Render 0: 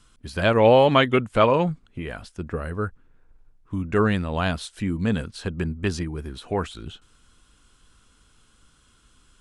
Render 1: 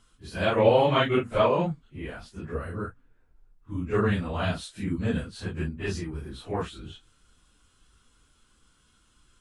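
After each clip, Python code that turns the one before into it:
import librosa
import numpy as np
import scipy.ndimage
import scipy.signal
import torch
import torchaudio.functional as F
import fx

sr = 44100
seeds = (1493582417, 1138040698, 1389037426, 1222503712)

y = fx.phase_scramble(x, sr, seeds[0], window_ms=100)
y = y * 10.0 ** (-4.5 / 20.0)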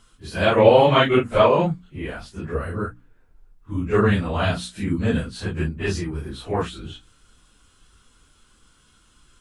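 y = fx.hum_notches(x, sr, base_hz=60, count=5)
y = y * 10.0 ** (6.5 / 20.0)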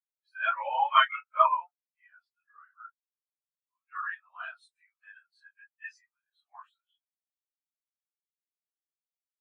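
y = scipy.signal.sosfilt(scipy.signal.bessel(6, 1400.0, 'highpass', norm='mag', fs=sr, output='sos'), x)
y = fx.dynamic_eq(y, sr, hz=3500.0, q=1.5, threshold_db=-46.0, ratio=4.0, max_db=-5)
y = fx.spectral_expand(y, sr, expansion=2.5)
y = y * 10.0 ** (4.0 / 20.0)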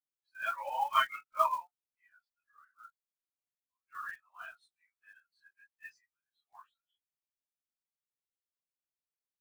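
y = fx.block_float(x, sr, bits=5)
y = fx.low_shelf(y, sr, hz=490.0, db=6.0)
y = y * 10.0 ** (-7.5 / 20.0)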